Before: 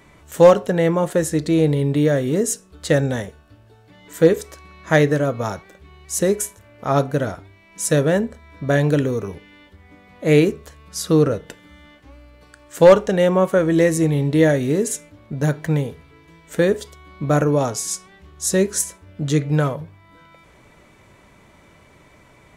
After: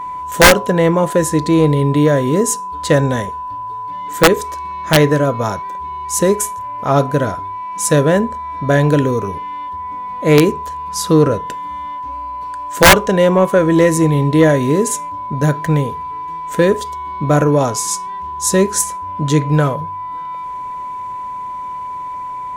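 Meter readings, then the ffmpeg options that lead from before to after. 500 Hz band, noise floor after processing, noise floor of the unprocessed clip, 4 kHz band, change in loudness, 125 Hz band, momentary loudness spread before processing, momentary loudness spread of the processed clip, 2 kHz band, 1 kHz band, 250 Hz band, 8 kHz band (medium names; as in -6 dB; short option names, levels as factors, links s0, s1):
+3.0 dB, -26 dBFS, -51 dBFS, +11.0 dB, +4.0 dB, +4.5 dB, 14 LU, 14 LU, +9.0 dB, +11.0 dB, +4.5 dB, +6.5 dB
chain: -af "acontrast=31,aeval=exprs='val(0)+0.0708*sin(2*PI*1000*n/s)':c=same,aeval=exprs='(mod(1.19*val(0)+1,2)-1)/1.19':c=same"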